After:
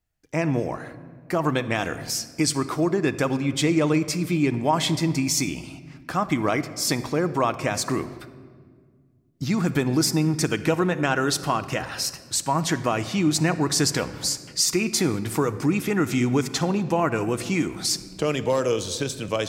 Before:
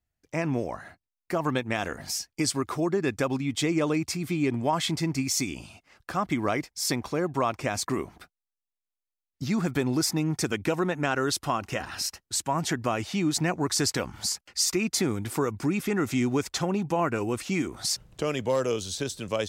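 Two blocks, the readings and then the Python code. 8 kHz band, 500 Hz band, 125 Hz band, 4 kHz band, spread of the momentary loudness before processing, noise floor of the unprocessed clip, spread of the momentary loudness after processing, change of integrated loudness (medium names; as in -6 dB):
+3.5 dB, +3.5 dB, +5.5 dB, +4.0 dB, 6 LU, under -85 dBFS, 7 LU, +4.0 dB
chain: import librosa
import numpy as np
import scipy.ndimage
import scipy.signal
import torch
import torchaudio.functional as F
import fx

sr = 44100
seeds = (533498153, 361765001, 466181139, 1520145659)

y = fx.room_shoebox(x, sr, seeds[0], volume_m3=2800.0, walls='mixed', distance_m=0.57)
y = y * librosa.db_to_amplitude(3.5)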